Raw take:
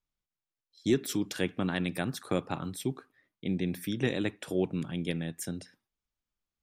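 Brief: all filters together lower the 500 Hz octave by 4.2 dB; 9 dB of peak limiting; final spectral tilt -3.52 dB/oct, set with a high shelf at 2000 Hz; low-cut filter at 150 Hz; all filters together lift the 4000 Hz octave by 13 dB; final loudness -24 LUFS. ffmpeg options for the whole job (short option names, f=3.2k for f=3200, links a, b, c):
-af "highpass=150,equalizer=f=500:t=o:g=-6.5,highshelf=f=2k:g=8.5,equalizer=f=4k:t=o:g=8,volume=9dB,alimiter=limit=-10dB:level=0:latency=1"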